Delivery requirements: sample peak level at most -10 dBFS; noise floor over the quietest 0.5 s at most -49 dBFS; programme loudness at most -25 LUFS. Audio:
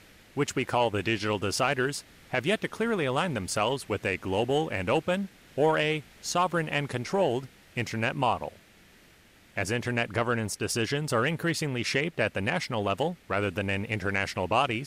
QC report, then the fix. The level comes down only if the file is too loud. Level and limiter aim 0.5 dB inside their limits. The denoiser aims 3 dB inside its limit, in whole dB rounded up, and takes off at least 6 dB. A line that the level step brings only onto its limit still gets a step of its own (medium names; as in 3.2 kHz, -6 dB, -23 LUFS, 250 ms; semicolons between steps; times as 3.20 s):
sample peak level -12.0 dBFS: pass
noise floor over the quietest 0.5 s -57 dBFS: pass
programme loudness -28.5 LUFS: pass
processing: none needed